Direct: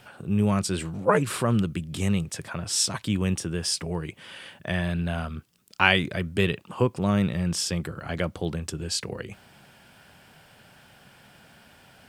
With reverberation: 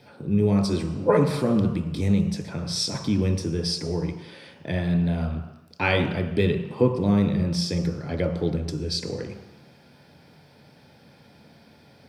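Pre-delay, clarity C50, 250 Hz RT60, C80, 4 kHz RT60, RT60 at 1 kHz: 3 ms, 7.0 dB, 1.0 s, 9.5 dB, 1.3 s, 1.2 s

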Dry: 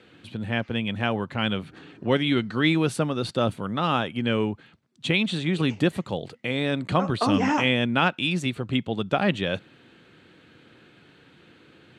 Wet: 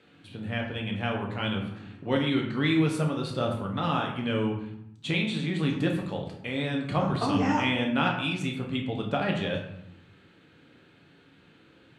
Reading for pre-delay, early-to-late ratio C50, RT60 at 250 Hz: 7 ms, 6.0 dB, 1.0 s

